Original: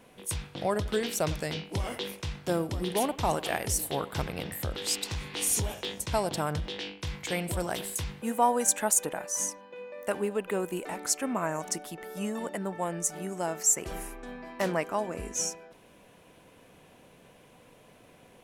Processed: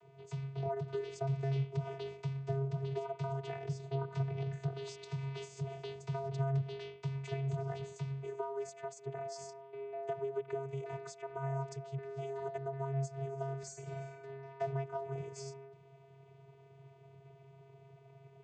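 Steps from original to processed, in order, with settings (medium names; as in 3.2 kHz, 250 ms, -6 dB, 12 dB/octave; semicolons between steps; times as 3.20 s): 3.65–4.09 s: low-pass 5.2 kHz 12 dB/octave; compression 12:1, threshold -30 dBFS, peak gain reduction 12.5 dB; small resonant body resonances 590/1100/2400 Hz, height 11 dB, ringing for 85 ms; vocoder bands 16, square 136 Hz; 13.58–14.25 s: flutter echo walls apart 8.6 m, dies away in 0.47 s; trim -2.5 dB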